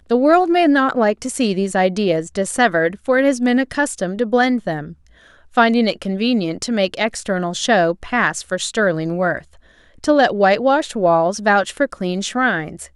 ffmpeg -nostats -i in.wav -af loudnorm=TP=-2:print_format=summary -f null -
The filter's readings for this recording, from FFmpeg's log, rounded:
Input Integrated:    -17.4 LUFS
Input True Peak:      -1.3 dBTP
Input LRA:             2.2 LU
Input Threshold:     -27.6 LUFS